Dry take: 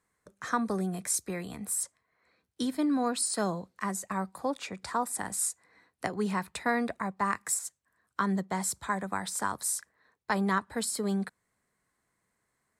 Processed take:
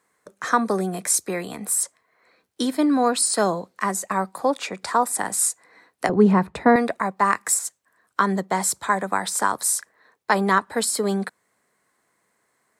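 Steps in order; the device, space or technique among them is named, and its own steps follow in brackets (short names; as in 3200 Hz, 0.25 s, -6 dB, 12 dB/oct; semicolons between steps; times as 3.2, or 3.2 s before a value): filter by subtraction (in parallel: LPF 470 Hz 12 dB/oct + phase invert); 6.09–6.76 on the sum: tilt -4.5 dB/oct; gain +9 dB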